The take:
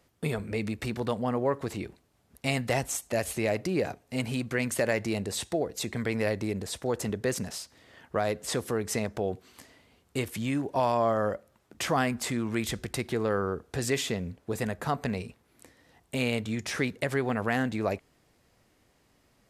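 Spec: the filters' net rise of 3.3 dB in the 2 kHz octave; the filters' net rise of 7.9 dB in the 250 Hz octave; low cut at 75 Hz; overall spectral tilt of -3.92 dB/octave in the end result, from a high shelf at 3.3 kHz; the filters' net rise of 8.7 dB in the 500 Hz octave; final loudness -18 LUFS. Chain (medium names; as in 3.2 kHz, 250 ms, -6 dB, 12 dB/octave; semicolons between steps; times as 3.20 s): high-pass 75 Hz; peaking EQ 250 Hz +7 dB; peaking EQ 500 Hz +8.5 dB; peaking EQ 2 kHz +4.5 dB; treble shelf 3.3 kHz -3.5 dB; trim +6 dB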